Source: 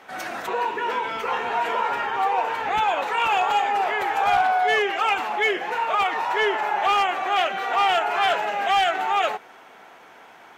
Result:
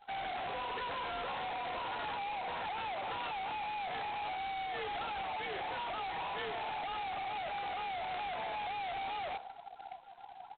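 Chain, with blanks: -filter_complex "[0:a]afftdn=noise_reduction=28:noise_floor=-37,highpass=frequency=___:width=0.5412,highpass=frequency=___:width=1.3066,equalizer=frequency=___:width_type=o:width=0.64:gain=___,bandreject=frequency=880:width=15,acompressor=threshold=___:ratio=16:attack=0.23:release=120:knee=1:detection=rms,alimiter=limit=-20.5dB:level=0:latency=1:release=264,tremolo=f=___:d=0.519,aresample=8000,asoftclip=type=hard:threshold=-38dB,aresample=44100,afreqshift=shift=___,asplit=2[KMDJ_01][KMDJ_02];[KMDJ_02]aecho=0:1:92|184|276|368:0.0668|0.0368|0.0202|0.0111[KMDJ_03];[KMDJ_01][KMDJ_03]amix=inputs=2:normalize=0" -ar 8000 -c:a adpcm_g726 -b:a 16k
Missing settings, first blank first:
170, 170, 710, 15, -18dB, 62, 33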